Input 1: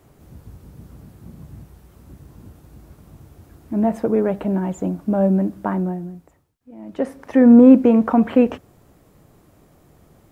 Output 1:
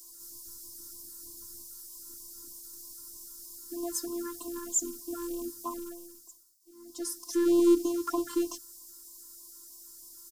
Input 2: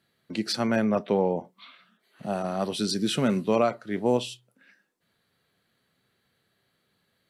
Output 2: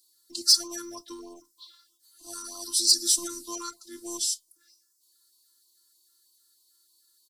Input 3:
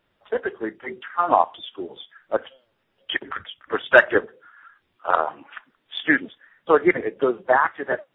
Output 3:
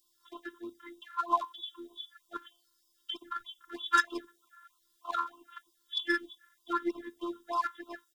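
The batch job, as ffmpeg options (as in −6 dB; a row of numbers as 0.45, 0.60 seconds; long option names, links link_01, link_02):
-filter_complex "[0:a]firequalizer=gain_entry='entry(130,0);entry(200,10);entry(420,-5);entry(660,-8);entry(950,9);entry(1600,13);entry(2300,-24);entry(5000,3)':delay=0.05:min_phase=1,afftfilt=real='hypot(re,im)*cos(PI*b)':imag='0':win_size=512:overlap=0.75,acrossover=split=140[link_01][link_02];[link_02]aexciter=amount=14.8:drive=8.5:freq=2700[link_03];[link_01][link_03]amix=inputs=2:normalize=0,afftfilt=real='re*(1-between(b*sr/1024,560*pow(1900/560,0.5+0.5*sin(2*PI*3.2*pts/sr))/1.41,560*pow(1900/560,0.5+0.5*sin(2*PI*3.2*pts/sr))*1.41))':imag='im*(1-between(b*sr/1024,560*pow(1900/560,0.5+0.5*sin(2*PI*3.2*pts/sr))/1.41,560*pow(1900/560,0.5+0.5*sin(2*PI*3.2*pts/sr))*1.41))':win_size=1024:overlap=0.75,volume=-13dB"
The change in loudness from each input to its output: −16.0, +2.0, −12.5 LU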